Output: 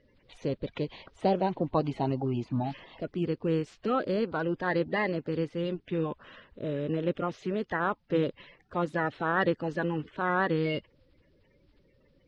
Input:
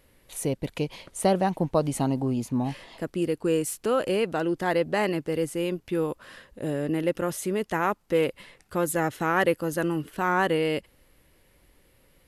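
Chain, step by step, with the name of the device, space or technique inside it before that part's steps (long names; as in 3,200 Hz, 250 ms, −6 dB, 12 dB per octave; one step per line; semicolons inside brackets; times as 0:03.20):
clip after many re-uploads (low-pass filter 4,200 Hz 24 dB per octave; spectral magnitudes quantised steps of 30 dB)
level −3 dB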